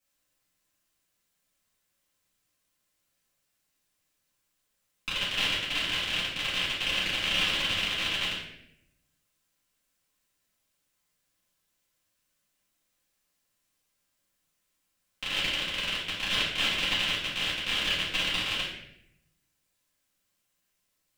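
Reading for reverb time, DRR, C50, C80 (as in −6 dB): 0.75 s, −12.0 dB, 2.5 dB, 6.0 dB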